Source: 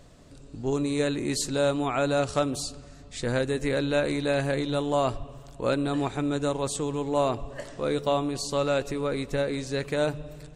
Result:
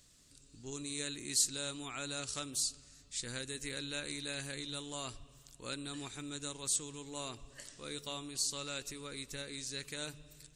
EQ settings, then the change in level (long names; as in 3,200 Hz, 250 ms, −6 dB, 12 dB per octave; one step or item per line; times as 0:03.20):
bass and treble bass −6 dB, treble +8 dB
guitar amp tone stack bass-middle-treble 6-0-2
low-shelf EQ 250 Hz −7 dB
+8.5 dB